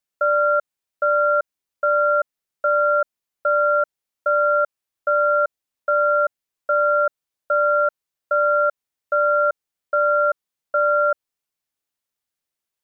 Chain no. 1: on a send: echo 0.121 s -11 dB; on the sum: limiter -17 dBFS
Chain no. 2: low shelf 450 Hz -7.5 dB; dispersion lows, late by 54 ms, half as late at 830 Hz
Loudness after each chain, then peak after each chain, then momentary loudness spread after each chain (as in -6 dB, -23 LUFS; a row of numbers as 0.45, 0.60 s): -25.5, -21.5 LUFS; -17.0, -13.0 dBFS; 9, 10 LU